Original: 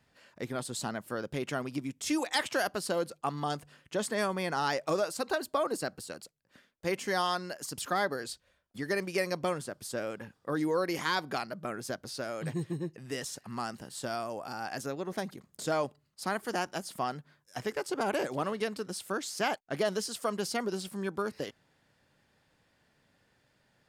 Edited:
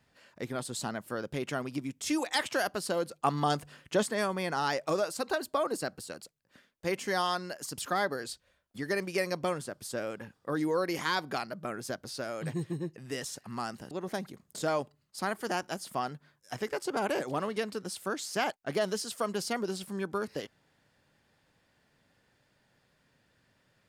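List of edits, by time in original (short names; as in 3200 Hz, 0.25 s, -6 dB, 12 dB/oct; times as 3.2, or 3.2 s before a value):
3.22–4.03 gain +5 dB
13.91–14.95 cut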